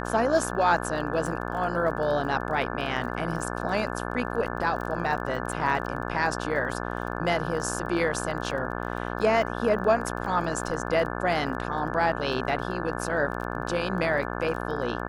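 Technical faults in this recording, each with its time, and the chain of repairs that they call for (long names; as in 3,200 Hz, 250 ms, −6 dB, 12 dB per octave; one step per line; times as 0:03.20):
mains buzz 60 Hz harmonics 29 −32 dBFS
surface crackle 22 per second −35 dBFS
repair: click removal
hum removal 60 Hz, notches 29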